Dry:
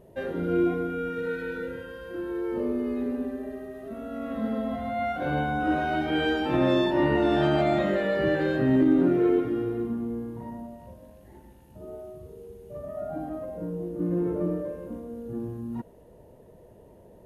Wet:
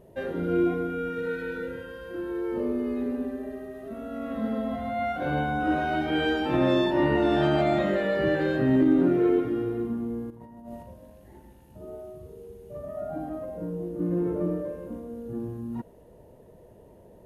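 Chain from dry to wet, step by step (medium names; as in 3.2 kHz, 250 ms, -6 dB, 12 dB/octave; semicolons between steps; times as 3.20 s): 10.30–10.83 s: compressor with a negative ratio -42 dBFS, ratio -0.5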